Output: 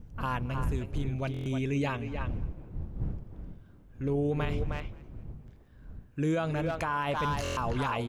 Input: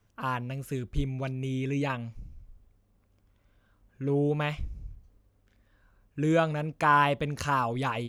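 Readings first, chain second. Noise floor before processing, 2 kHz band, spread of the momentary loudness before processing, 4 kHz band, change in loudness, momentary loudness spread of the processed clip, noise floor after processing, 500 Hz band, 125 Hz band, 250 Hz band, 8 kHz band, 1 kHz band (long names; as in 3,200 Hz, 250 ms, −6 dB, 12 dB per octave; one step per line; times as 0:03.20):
−68 dBFS, −5.0 dB, 13 LU, −2.0 dB, −3.5 dB, 17 LU, −55 dBFS, −2.5 dB, −0.5 dB, −1.5 dB, can't be measured, −5.5 dB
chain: wind on the microphone 100 Hz −35 dBFS
far-end echo of a speakerphone 310 ms, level −7 dB
brickwall limiter −21.5 dBFS, peak gain reduction 11 dB
on a send: echo with shifted repeats 215 ms, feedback 38%, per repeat −45 Hz, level −22.5 dB
on the sum: buffer that repeats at 0:01.32/0:07.43, samples 1,024, times 5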